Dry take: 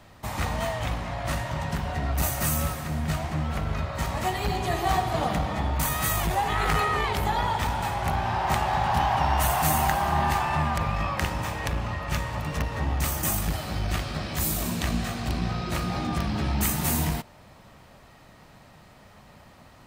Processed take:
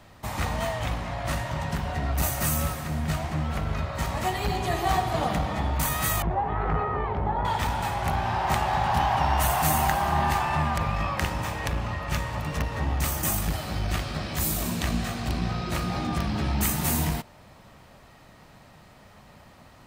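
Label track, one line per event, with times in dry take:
6.220000	7.450000	low-pass 1.1 kHz

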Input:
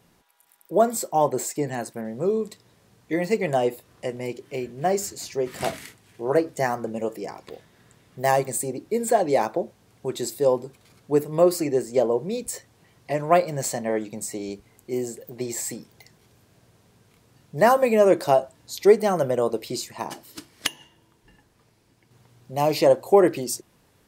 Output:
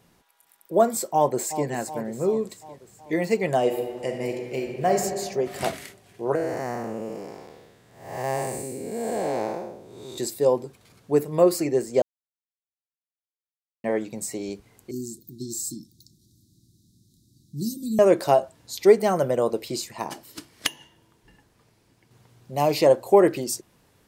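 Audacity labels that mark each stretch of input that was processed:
1.130000	1.670000	echo throw 370 ms, feedback 60%, level -11.5 dB
3.590000	4.960000	reverb throw, RT60 1.8 s, DRR 2.5 dB
6.350000	10.180000	spectral blur width 305 ms
12.020000	13.840000	mute
14.910000	17.990000	Chebyshev band-stop 340–3800 Hz, order 5

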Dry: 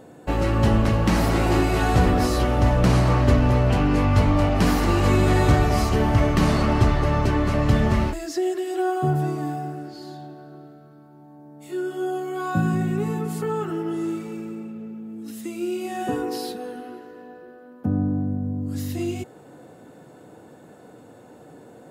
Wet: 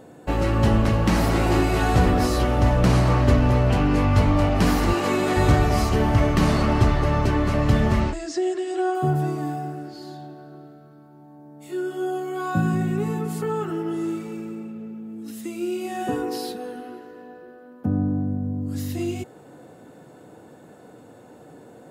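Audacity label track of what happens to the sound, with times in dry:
4.930000	5.370000	high-pass 240 Hz
8.000000	8.950000	steep low-pass 8.8 kHz 48 dB/octave

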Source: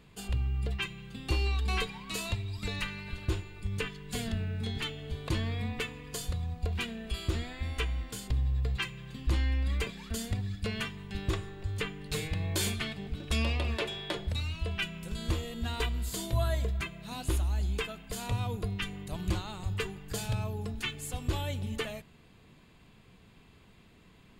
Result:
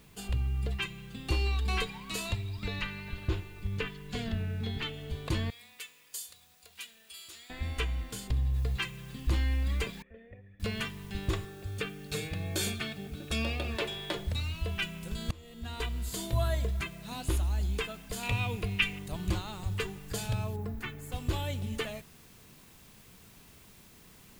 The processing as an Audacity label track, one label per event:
2.490000	4.940000	low-pass 4.4 kHz
5.500000	7.500000	differentiator
8.540000	8.540000	noise floor step -65 dB -59 dB
10.020000	10.600000	cascade formant filter e
11.450000	13.750000	comb of notches 1 kHz
15.310000	16.440000	fade in equal-power, from -23.5 dB
18.230000	18.990000	peaking EQ 2.5 kHz +13.5 dB 0.64 oct
20.560000	21.120000	high-order bell 5.4 kHz -11 dB 2.4 oct

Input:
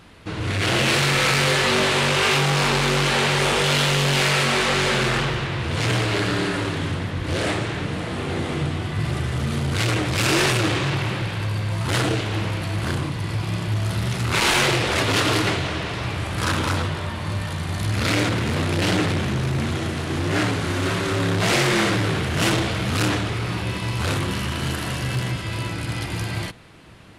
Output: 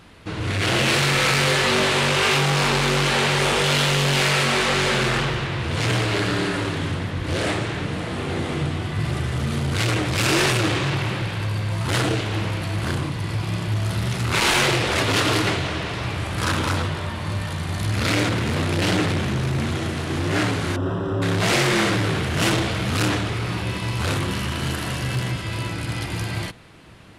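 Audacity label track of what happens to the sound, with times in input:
20.760000	21.220000	boxcar filter over 20 samples

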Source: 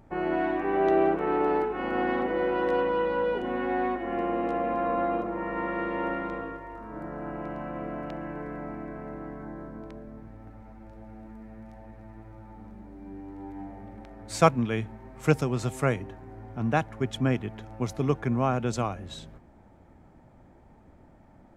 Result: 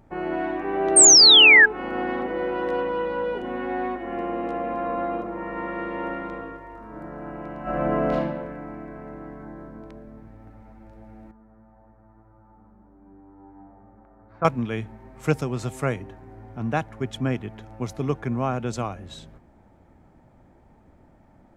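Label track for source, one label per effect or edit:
0.960000	1.660000	painted sound fall 1.6–8.9 kHz -11 dBFS
7.620000	8.170000	reverb throw, RT60 1.2 s, DRR -10.5 dB
11.310000	14.450000	four-pole ladder low-pass 1.5 kHz, resonance 45%

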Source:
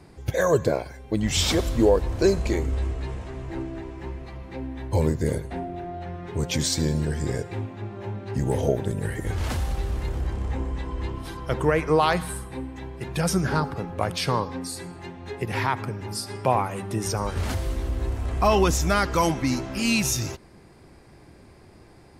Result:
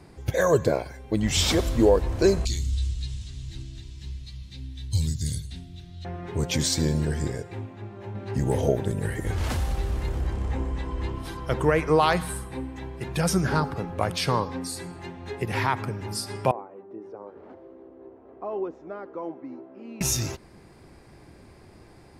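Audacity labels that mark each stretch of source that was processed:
2.450000	6.050000	FFT filter 120 Hz 0 dB, 230 Hz -10 dB, 470 Hz -27 dB, 860 Hz -26 dB, 2.3 kHz -9 dB, 3.7 kHz +10 dB, 7 kHz +8 dB, 14 kHz +1 dB
7.280000	8.150000	gain -4.5 dB
16.510000	20.010000	ladder band-pass 460 Hz, resonance 35%

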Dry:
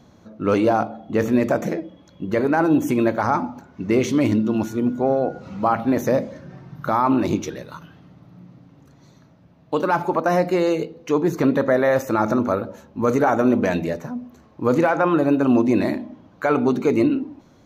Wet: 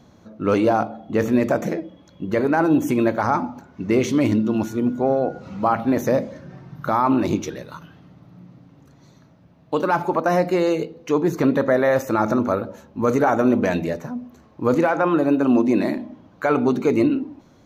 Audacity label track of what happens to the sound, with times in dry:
14.740000	15.980000	Chebyshev high-pass 180 Hz

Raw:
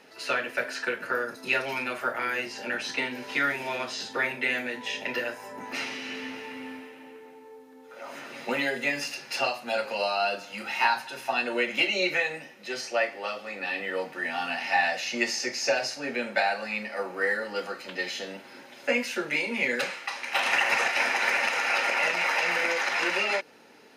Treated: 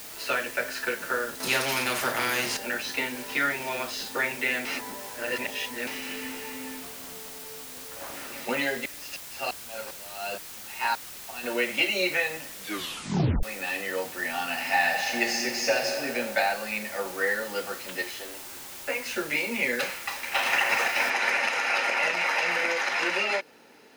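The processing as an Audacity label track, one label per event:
1.400000	2.570000	spectrum-flattening compressor 2:1
4.650000	5.870000	reverse
6.830000	8.160000	loudspeaker Doppler distortion depth 0.7 ms
8.830000	11.430000	sawtooth tremolo in dB swelling 3.5 Hz -> 1.3 Hz, depth 32 dB
12.570000	12.570000	tape stop 0.86 s
14.460000	15.950000	reverb throw, RT60 2.9 s, DRR 3.5 dB
18.020000	19.060000	rippled Chebyshev high-pass 260 Hz, ripple 6 dB
21.100000	21.100000	noise floor step -42 dB -69 dB

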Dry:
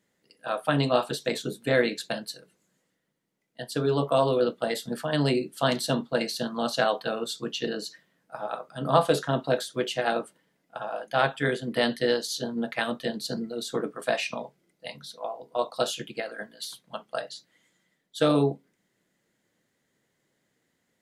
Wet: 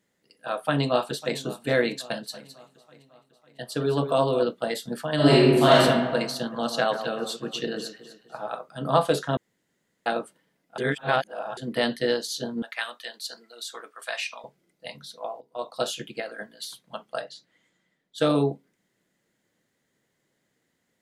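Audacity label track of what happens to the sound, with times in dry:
0.600000	1.370000	echo throw 550 ms, feedback 55%, level -17 dB
2.130000	4.430000	delay 211 ms -11.5 dB
5.150000	5.800000	reverb throw, RT60 1.4 s, DRR -9 dB
6.380000	8.550000	echo whose repeats swap between lows and highs 125 ms, split 2.1 kHz, feedback 59%, level -9.5 dB
9.370000	10.060000	room tone
10.780000	11.570000	reverse
12.620000	14.440000	high-pass 1.1 kHz
15.410000	15.880000	fade in, from -14 dB
17.240000	18.180000	treble shelf 6.7 kHz -10.5 dB

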